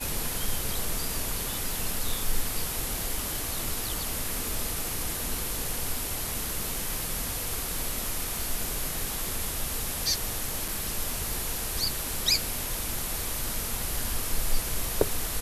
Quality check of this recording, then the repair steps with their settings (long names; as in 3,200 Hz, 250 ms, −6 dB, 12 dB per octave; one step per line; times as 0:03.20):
0:10.68: drop-out 4.1 ms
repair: repair the gap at 0:10.68, 4.1 ms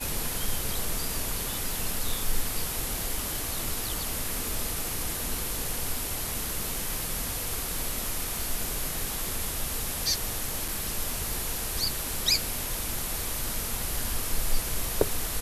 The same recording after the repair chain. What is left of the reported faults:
none of them is left